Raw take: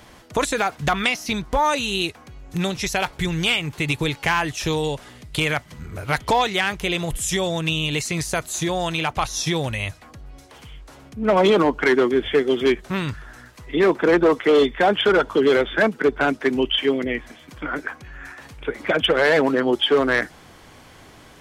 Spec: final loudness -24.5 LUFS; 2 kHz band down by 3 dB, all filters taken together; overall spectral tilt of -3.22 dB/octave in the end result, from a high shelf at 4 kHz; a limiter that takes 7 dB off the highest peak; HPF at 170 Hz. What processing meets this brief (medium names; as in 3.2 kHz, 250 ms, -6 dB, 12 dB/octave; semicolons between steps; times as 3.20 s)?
high-pass 170 Hz; peaking EQ 2 kHz -5.5 dB; treble shelf 4 kHz +6 dB; trim -0.5 dB; peak limiter -13.5 dBFS